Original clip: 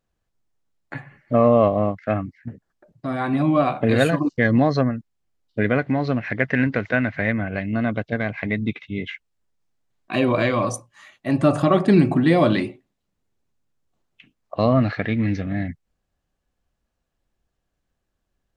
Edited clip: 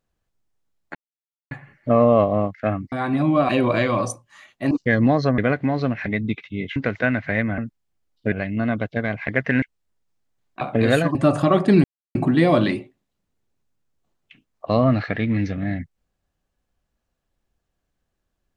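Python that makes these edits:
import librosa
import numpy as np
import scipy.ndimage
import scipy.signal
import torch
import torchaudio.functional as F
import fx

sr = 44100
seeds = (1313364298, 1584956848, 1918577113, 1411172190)

y = fx.edit(x, sr, fx.insert_silence(at_s=0.95, length_s=0.56),
    fx.cut(start_s=2.36, length_s=0.76),
    fx.swap(start_s=3.69, length_s=0.54, other_s=10.13, other_length_s=1.22),
    fx.move(start_s=4.9, length_s=0.74, to_s=7.48),
    fx.swap(start_s=6.32, length_s=0.34, other_s=8.44, other_length_s=0.7),
    fx.insert_silence(at_s=12.04, length_s=0.31), tone=tone)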